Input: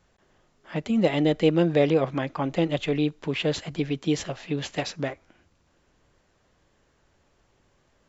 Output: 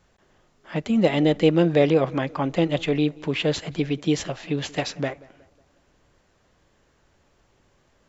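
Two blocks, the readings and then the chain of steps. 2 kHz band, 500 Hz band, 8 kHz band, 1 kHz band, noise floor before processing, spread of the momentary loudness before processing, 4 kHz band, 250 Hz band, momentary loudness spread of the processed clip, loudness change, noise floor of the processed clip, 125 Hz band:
+2.5 dB, +2.5 dB, n/a, +2.5 dB, -67 dBFS, 10 LU, +2.5 dB, +2.5 dB, 10 LU, +2.5 dB, -64 dBFS, +2.5 dB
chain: tape echo 0.181 s, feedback 51%, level -21.5 dB, low-pass 1900 Hz; gain +2.5 dB

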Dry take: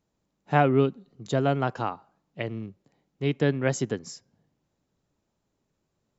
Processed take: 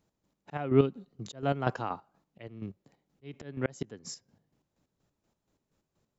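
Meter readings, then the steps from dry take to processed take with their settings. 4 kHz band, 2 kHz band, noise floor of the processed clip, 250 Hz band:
-7.0 dB, -10.0 dB, -84 dBFS, -5.5 dB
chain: auto swell 0.351 s; chopper 4.2 Hz, depth 60%, duty 40%; gain +2 dB

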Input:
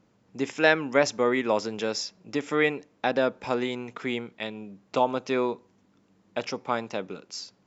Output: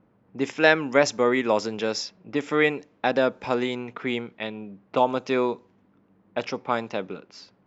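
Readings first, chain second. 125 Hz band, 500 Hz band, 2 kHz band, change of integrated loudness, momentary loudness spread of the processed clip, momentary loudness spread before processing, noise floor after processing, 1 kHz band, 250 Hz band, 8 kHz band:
+2.5 dB, +2.5 dB, +2.5 dB, +2.5 dB, 14 LU, 13 LU, -63 dBFS, +2.5 dB, +2.5 dB, n/a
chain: low-pass opened by the level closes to 1700 Hz, open at -21.5 dBFS; gain +2.5 dB

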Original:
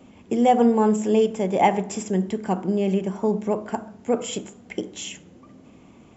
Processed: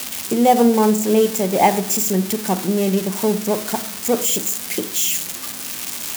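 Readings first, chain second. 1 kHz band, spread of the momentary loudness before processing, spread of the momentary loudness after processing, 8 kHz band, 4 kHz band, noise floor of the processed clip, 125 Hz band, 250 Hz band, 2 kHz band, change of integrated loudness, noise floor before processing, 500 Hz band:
+3.5 dB, 16 LU, 10 LU, n/a, +11.0 dB, -31 dBFS, +3.5 dB, +3.5 dB, +6.5 dB, +4.5 dB, -51 dBFS, +3.5 dB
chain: switching spikes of -16.5 dBFS; gain +3.5 dB

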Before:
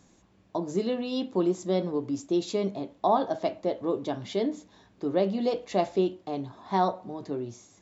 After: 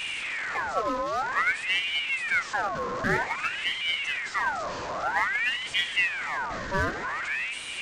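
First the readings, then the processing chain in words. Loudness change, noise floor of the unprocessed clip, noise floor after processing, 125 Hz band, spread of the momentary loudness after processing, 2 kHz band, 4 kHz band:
+2.0 dB, -62 dBFS, -36 dBFS, -3.5 dB, 5 LU, +23.0 dB, +12.0 dB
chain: delta modulation 32 kbps, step -28.5 dBFS; graphic EQ 250/2000/4000 Hz +5/-6/-6 dB; in parallel at -5 dB: wavefolder -29.5 dBFS; on the sum: crackle 190/s -58 dBFS; ring modulator with a swept carrier 1700 Hz, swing 55%, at 0.52 Hz

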